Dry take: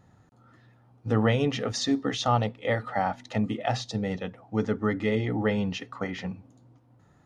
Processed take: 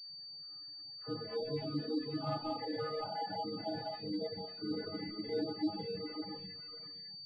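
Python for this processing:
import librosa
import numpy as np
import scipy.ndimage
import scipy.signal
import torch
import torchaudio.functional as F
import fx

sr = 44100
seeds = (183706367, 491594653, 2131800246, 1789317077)

p1 = fx.spec_steps(x, sr, hold_ms=200)
p2 = fx.rev_gated(p1, sr, seeds[0], gate_ms=250, shape='rising', drr_db=0.0)
p3 = fx.over_compress(p2, sr, threshold_db=-27.0, ratio=-1.0)
p4 = fx.stiff_resonator(p3, sr, f0_hz=150.0, decay_s=0.44, stiffness=0.008)
p5 = fx.dispersion(p4, sr, late='lows', ms=98.0, hz=1000.0)
p6 = p5 + fx.echo_single(p5, sr, ms=547, db=-5.5, dry=0)
p7 = fx.dynamic_eq(p6, sr, hz=340.0, q=0.73, threshold_db=-53.0, ratio=4.0, max_db=6)
p8 = fx.dereverb_blind(p7, sr, rt60_s=1.6)
p9 = fx.spec_gate(p8, sr, threshold_db=-25, keep='strong')
p10 = fx.pwm(p9, sr, carrier_hz=4600.0)
y = p10 * librosa.db_to_amplitude(2.0)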